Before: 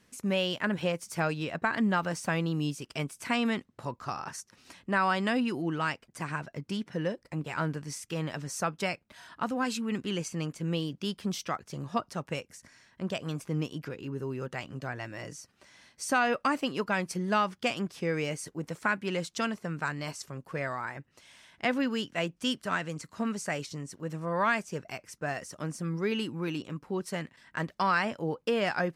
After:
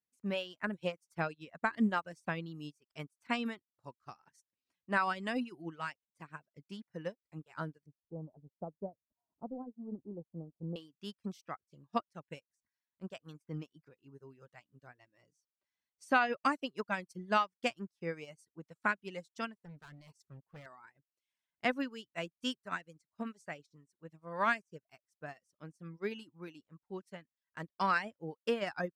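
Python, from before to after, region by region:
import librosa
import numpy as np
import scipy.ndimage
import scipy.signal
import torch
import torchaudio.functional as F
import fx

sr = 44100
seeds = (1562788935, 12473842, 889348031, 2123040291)

y = fx.chain(x, sr, fx.law_mismatch(coded='mu'),
    fx.steep_lowpass(hz=800.0, slope=36), at=(7.86, 10.76))
y = fx.chain(y, sr, fx.low_shelf(hz=220.0, db=10.0),
    fx.clip_hard(threshold_db=-31.5), at=(19.65, 20.66))
y = fx.dereverb_blind(y, sr, rt60_s=0.69)
y = fx.upward_expand(y, sr, threshold_db=-47.0, expansion=2.5)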